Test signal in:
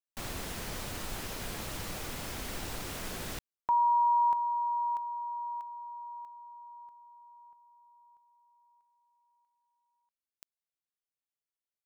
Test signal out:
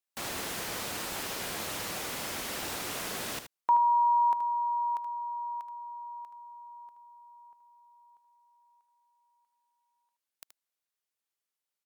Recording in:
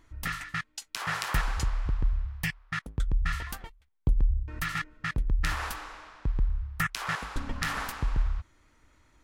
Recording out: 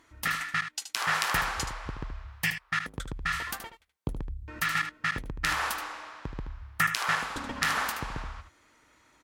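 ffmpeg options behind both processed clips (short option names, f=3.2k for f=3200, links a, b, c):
-af "highpass=f=350:p=1,aecho=1:1:76:0.335,volume=4.5dB" -ar 48000 -c:a ac3 -b:a 128k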